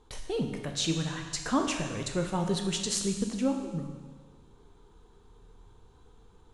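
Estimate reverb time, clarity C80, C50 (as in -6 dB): 1.5 s, 7.0 dB, 5.5 dB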